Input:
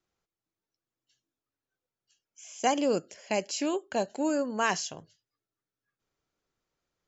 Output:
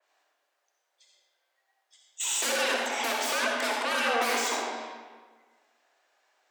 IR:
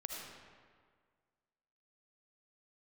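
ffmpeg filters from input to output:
-filter_complex "[0:a]highpass=frequency=110:poles=1,bass=frequency=250:gain=-12,treble=frequency=4000:gain=-6,agate=range=-14dB:threshold=-57dB:ratio=16:detection=peak,acompressor=threshold=-52dB:ratio=2,aeval=exprs='0.0335*sin(PI/2*10*val(0)/0.0335)':channel_layout=same,afreqshift=210[link_01];[1:a]atrim=start_sample=2205,asetrate=48510,aresample=44100[link_02];[link_01][link_02]afir=irnorm=-1:irlink=0,asetrate=48000,aresample=44100,adynamicequalizer=threshold=0.00398:dfrequency=3100:dqfactor=0.7:tfrequency=3100:tqfactor=0.7:attack=5:release=100:ratio=0.375:range=2.5:mode=cutabove:tftype=highshelf,volume=8.5dB"

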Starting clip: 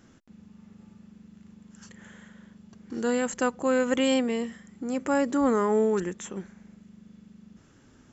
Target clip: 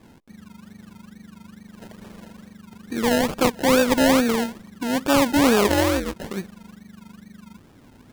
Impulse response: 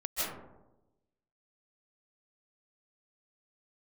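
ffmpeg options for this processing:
-filter_complex "[0:a]acrusher=samples=30:mix=1:aa=0.000001:lfo=1:lforange=18:lforate=2.3,asplit=3[link_01][link_02][link_03];[link_01]afade=type=out:start_time=5.67:duration=0.02[link_04];[link_02]aeval=exprs='val(0)*sin(2*PI*130*n/s)':channel_layout=same,afade=type=in:start_time=5.67:duration=0.02,afade=type=out:start_time=6.15:duration=0.02[link_05];[link_03]afade=type=in:start_time=6.15:duration=0.02[link_06];[link_04][link_05][link_06]amix=inputs=3:normalize=0,volume=6.5dB"

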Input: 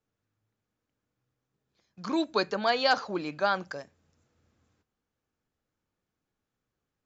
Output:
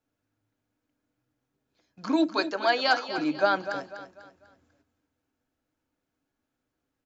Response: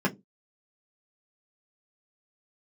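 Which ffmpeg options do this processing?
-filter_complex "[0:a]asettb=1/sr,asplit=3[link_01][link_02][link_03];[link_01]atrim=end=2.274[link_04];[link_02]atrim=start=2.27:end=3.18,asetpts=PTS-STARTPTS,afade=type=in:duration=0.004:curve=qsin,afade=type=out:start_time=0.906:duration=0.004:curve=qsin,highpass=frequency=590:poles=1[link_05];[link_03]atrim=start=3.176[link_06];[link_04][link_05]acrossfade=duration=0.004:curve1=hsin:curve2=qsin[link_07];[link_07][link_06]acrossfade=duration=0.004:curve1=qsin:curve2=hsin,aecho=1:1:247|494|741|988:0.282|0.104|0.0386|0.0143,asplit=2[link_08][link_09];[1:a]atrim=start_sample=2205,asetrate=70560,aresample=44100[link_10];[link_09][link_10]afir=irnorm=-1:irlink=0,volume=-14dB[link_11];[link_08][link_11]amix=inputs=2:normalize=0"

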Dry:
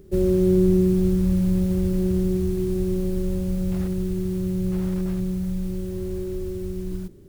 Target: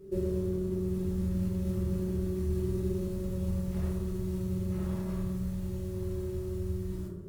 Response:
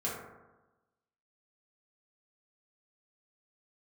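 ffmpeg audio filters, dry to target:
-filter_complex "[0:a]alimiter=limit=-18.5dB:level=0:latency=1:release=27[link_01];[1:a]atrim=start_sample=2205,afade=type=out:start_time=0.27:duration=0.01,atrim=end_sample=12348,asetrate=36603,aresample=44100[link_02];[link_01][link_02]afir=irnorm=-1:irlink=0,volume=-9dB"

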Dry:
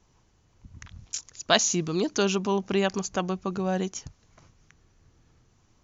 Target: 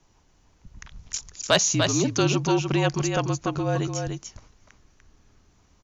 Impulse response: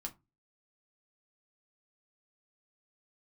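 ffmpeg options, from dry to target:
-af "aecho=1:1:295:0.531,afreqshift=-46,acontrast=64,volume=-4dB"

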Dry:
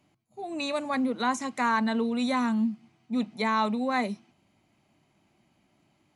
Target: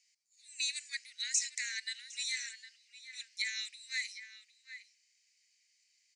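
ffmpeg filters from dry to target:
ffmpeg -i in.wav -filter_complex "[0:a]asuperpass=centerf=4300:order=20:qfactor=0.58,highshelf=frequency=4100:width_type=q:width=3:gain=6.5,asplit=2[link_01][link_02];[link_02]adelay=758,volume=-8dB,highshelf=frequency=4000:gain=-17.1[link_03];[link_01][link_03]amix=inputs=2:normalize=0" out.wav

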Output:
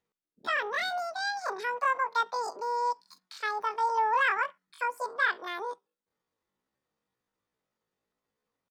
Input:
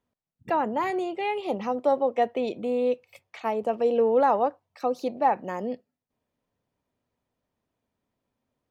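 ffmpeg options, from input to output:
ffmpeg -i in.wav -af "equalizer=frequency=2200:width=0.64:gain=3,asetrate=85689,aresample=44100,atempo=0.514651,volume=-5dB" out.wav

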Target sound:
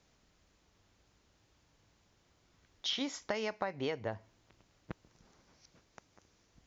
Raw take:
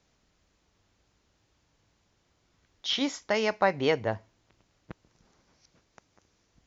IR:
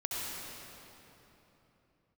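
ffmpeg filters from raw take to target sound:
-af "acompressor=threshold=-32dB:ratio=12"

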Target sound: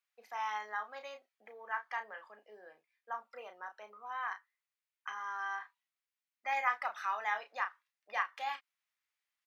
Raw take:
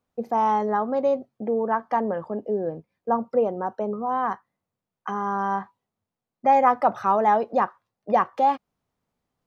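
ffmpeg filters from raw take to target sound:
ffmpeg -i in.wav -filter_complex "[0:a]highpass=frequency=2000:width_type=q:width=1.8,asplit=2[link_01][link_02];[link_02]adelay=33,volume=-8dB[link_03];[link_01][link_03]amix=inputs=2:normalize=0,volume=-5dB" out.wav

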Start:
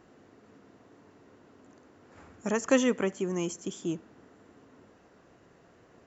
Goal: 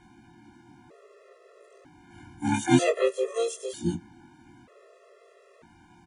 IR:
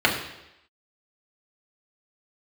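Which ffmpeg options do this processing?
-filter_complex "[0:a]afftfilt=real='re':imag='-im':win_size=2048:overlap=0.75,asplit=4[link_01][link_02][link_03][link_04];[link_02]asetrate=22050,aresample=44100,atempo=2,volume=-6dB[link_05];[link_03]asetrate=29433,aresample=44100,atempo=1.49831,volume=-17dB[link_06];[link_04]asetrate=58866,aresample=44100,atempo=0.749154,volume=0dB[link_07];[link_01][link_05][link_06][link_07]amix=inputs=4:normalize=0,afftfilt=real='re*gt(sin(2*PI*0.53*pts/sr)*(1-2*mod(floor(b*sr/1024/350),2)),0)':imag='im*gt(sin(2*PI*0.53*pts/sr)*(1-2*mod(floor(b*sr/1024/350),2)),0)':win_size=1024:overlap=0.75,volume=7dB"

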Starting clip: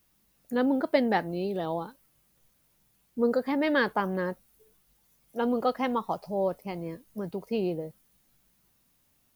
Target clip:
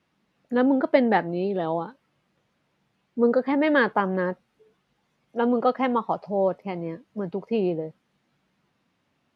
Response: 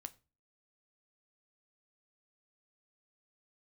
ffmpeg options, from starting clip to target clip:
-af "highpass=130,lowpass=2900,volume=5dB"

